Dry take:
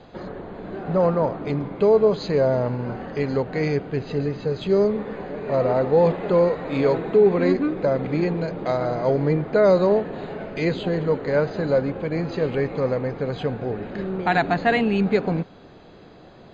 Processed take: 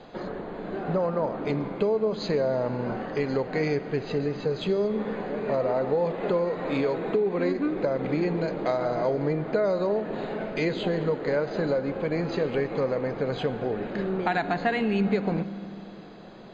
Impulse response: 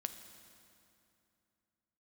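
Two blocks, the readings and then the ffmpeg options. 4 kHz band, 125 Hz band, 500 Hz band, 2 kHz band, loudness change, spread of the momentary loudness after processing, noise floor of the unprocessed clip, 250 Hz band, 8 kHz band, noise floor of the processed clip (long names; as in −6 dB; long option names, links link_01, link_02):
−2.0 dB, −6.0 dB, −5.5 dB, −4.0 dB, −5.0 dB, 6 LU, −47 dBFS, −4.0 dB, can't be measured, −41 dBFS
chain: -filter_complex "[0:a]equalizer=frequency=73:width=0.97:gain=-11,acompressor=threshold=-23dB:ratio=6,asplit=2[link_01][link_02];[1:a]atrim=start_sample=2205[link_03];[link_02][link_03]afir=irnorm=-1:irlink=0,volume=2.5dB[link_04];[link_01][link_04]amix=inputs=2:normalize=0,volume=-5.5dB"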